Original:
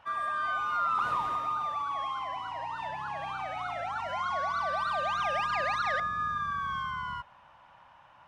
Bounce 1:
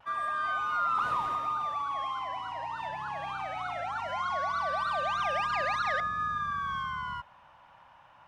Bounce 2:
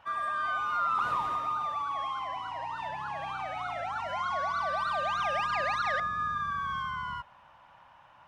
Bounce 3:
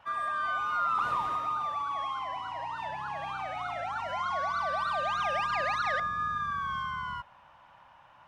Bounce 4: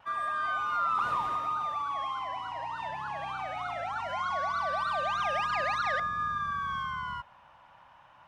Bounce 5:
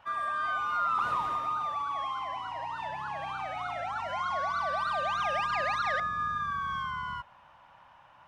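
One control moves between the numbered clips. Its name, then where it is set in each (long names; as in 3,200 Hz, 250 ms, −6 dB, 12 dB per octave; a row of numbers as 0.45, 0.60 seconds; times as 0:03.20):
pitch vibrato, speed: 0.35, 13, 1.6, 0.77, 2.7 Hertz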